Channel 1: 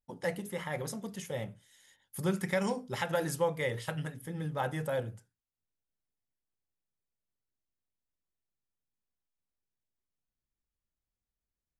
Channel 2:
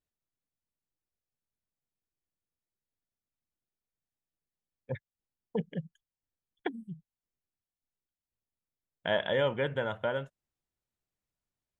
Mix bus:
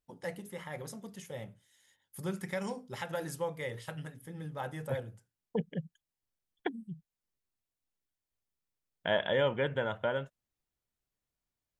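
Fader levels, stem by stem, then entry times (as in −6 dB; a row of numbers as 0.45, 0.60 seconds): −5.5, −0.5 decibels; 0.00, 0.00 seconds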